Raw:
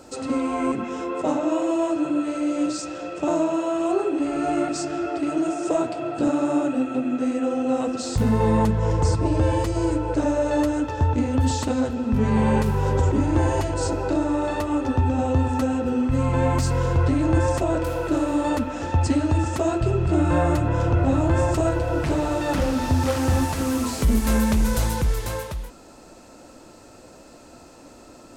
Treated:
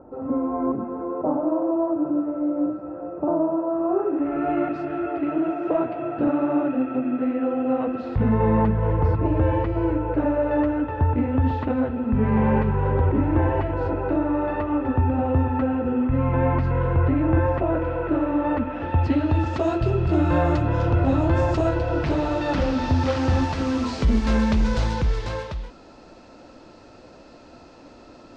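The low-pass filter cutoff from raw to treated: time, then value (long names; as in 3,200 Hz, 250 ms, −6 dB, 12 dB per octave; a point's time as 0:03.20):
low-pass filter 24 dB per octave
0:03.70 1,100 Hz
0:04.52 2,400 Hz
0:18.54 2,400 Hz
0:19.72 5,100 Hz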